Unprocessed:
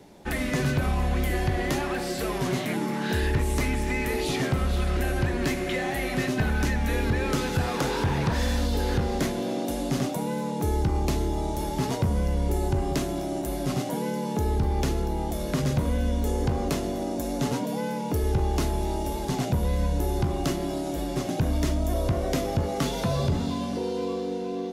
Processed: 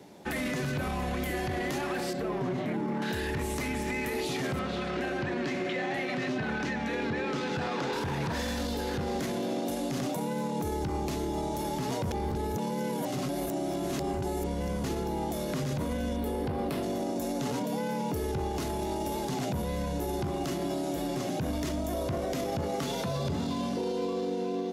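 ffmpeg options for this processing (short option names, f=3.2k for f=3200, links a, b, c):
-filter_complex "[0:a]asettb=1/sr,asplit=3[a][b][c];[a]atrim=end=2.134[d];[b]atrim=start=2.13:end=3.02,asetpts=PTS-STARTPTS,afade=t=in:d=0.004:c=qsin,afade=t=out:st=0.886:d=0.004:c=qsin,lowpass=f=1k:p=1[e];[c]atrim=start=3.016[f];[d][e]acrossfade=d=0.004:c1=hsin:c2=qsin[g];[g][f]acrossfade=d=0.004:c1=qsin:c2=hsin,asettb=1/sr,asplit=3[h][i][j];[h]atrim=end=4.594[k];[i]atrim=start=4.59:end=7.93,asetpts=PTS-STARTPTS,afade=t=in:d=0.004:c=qsin,afade=t=out:st=3.336:d=0.004:c=qsin,highpass=130,lowpass=4.8k[l];[j]atrim=start=7.926[m];[k][l]acrossfade=d=0.004:c1=hsin:c2=qsin[n];[n][m]acrossfade=d=0.004:c1=qsin:c2=hsin,asettb=1/sr,asplit=3[o][p][q];[o]atrim=end=16.164[r];[p]atrim=start=16.16:end=16.83,asetpts=PTS-STARTPTS,afade=t=in:d=0.004:c=qsin,afade=t=out:st=0.666:d=0.004:c=qsin,equalizer=f=6.6k:t=o:w=0.57:g=-14.5[s];[q]atrim=start=16.826[t];[r][s]acrossfade=d=0.004:c1=hsin:c2=qsin[u];[u][t]acrossfade=d=0.004:c1=qsin:c2=hsin,asplit=3[v][w][x];[v]atrim=end=12.112[y];[w]atrim=start=12.108:end=14.842,asetpts=PTS-STARTPTS,areverse[z];[x]atrim=start=14.838[aa];[y][z]acrossfade=d=0.004:c1=hsin:c2=hsin[ab];[ab][aa]acrossfade=d=0.004:c1=hsin:c2=hsin,highpass=110,equalizer=f=9.3k:w=7.3:g=-3,alimiter=limit=-24dB:level=0:latency=1:release=16"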